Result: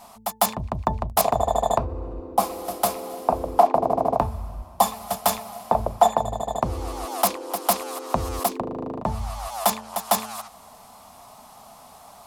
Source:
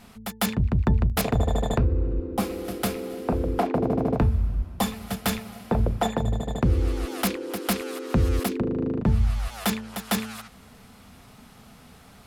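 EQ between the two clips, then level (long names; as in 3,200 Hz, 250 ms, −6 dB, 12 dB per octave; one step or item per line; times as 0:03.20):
bass and treble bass −5 dB, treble +11 dB
flat-topped bell 830 Hz +15 dB 1.2 octaves
−4.0 dB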